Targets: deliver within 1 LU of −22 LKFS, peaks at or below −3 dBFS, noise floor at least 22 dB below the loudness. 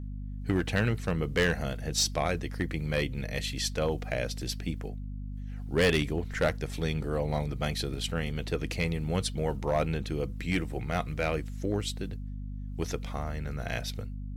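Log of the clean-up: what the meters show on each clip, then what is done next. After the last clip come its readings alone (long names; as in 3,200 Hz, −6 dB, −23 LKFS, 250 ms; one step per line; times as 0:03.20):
share of clipped samples 0.4%; peaks flattened at −19.0 dBFS; mains hum 50 Hz; hum harmonics up to 250 Hz; level of the hum −35 dBFS; integrated loudness −31.5 LKFS; sample peak −19.0 dBFS; target loudness −22.0 LKFS
→ clipped peaks rebuilt −19 dBFS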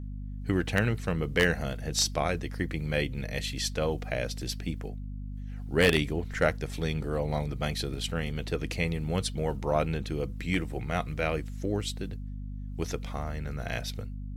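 share of clipped samples 0.0%; mains hum 50 Hz; hum harmonics up to 250 Hz; level of the hum −35 dBFS
→ hum removal 50 Hz, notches 5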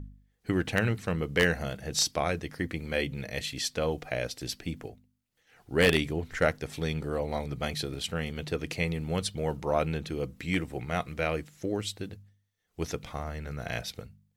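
mains hum none found; integrated loudness −31.0 LKFS; sample peak −9.5 dBFS; target loudness −22.0 LKFS
→ level +9 dB
brickwall limiter −3 dBFS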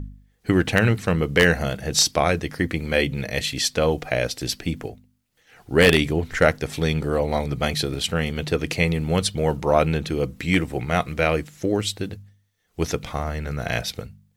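integrated loudness −22.5 LKFS; sample peak −3.0 dBFS; background noise floor −65 dBFS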